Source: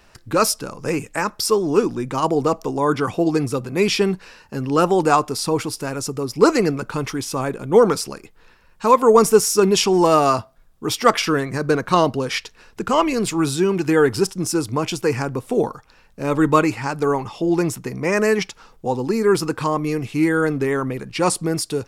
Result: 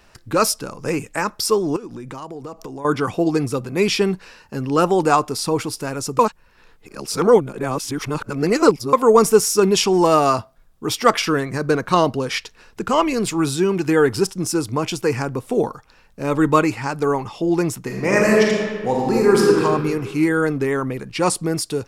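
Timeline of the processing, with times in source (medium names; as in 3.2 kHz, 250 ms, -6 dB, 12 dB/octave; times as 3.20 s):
1.76–2.85 s: compression 10:1, threshold -29 dBFS
6.19–8.93 s: reverse
17.82–19.63 s: reverb throw, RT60 1.7 s, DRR -2 dB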